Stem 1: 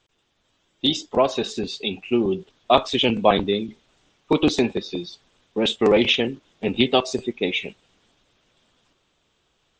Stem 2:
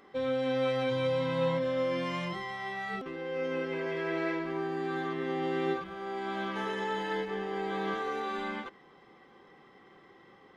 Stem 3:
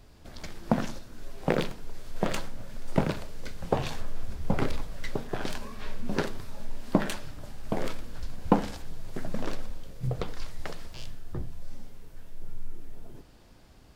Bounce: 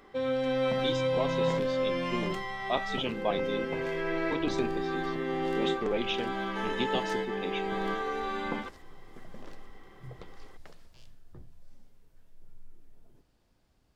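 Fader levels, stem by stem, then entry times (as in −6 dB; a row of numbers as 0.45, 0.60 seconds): −14.0, +1.0, −15.0 decibels; 0.00, 0.00, 0.00 seconds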